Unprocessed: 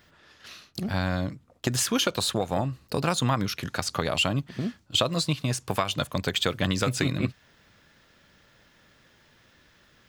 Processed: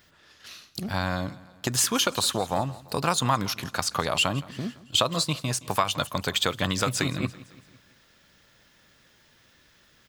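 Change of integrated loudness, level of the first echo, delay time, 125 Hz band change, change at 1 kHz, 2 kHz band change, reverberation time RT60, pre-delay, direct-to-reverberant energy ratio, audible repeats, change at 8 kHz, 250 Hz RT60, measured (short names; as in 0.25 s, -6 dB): +1.0 dB, -20.0 dB, 0.169 s, -2.5 dB, +3.5 dB, +1.0 dB, none, none, none, 3, +3.5 dB, none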